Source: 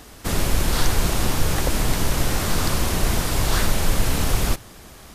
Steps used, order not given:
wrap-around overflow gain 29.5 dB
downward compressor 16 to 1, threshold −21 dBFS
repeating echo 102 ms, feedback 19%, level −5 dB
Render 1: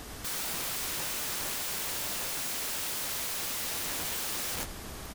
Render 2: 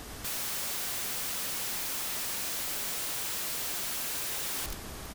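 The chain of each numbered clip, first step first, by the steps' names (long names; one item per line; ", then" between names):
downward compressor, then repeating echo, then wrap-around overflow
repeating echo, then wrap-around overflow, then downward compressor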